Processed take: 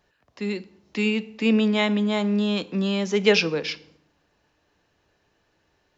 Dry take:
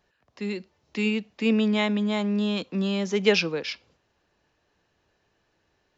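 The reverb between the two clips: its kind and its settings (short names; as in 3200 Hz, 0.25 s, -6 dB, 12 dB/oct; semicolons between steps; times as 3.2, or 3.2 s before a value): FDN reverb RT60 0.7 s, low-frequency decay 1.45×, high-frequency decay 0.75×, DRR 14.5 dB; gain +2.5 dB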